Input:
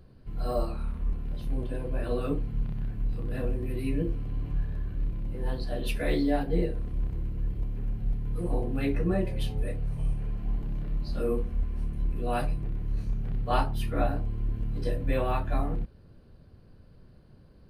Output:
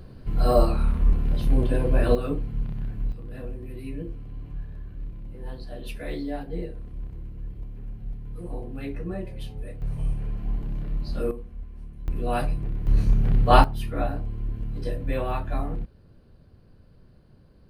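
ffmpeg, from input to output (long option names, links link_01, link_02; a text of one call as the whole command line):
ffmpeg -i in.wav -af "asetnsamples=nb_out_samples=441:pad=0,asendcmd='2.15 volume volume 1.5dB;3.12 volume volume -5.5dB;9.82 volume volume 2dB;11.31 volume volume -9dB;12.08 volume volume 3dB;12.87 volume volume 10.5dB;13.64 volume volume 0dB',volume=10dB" out.wav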